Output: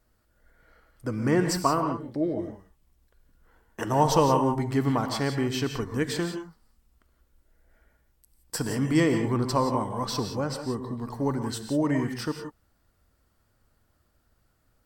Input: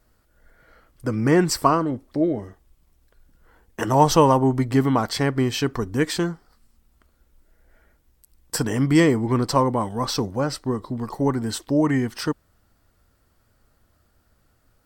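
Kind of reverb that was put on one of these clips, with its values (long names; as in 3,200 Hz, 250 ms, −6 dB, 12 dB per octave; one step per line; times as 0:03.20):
reverb whose tail is shaped and stops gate 200 ms rising, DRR 6 dB
level −6 dB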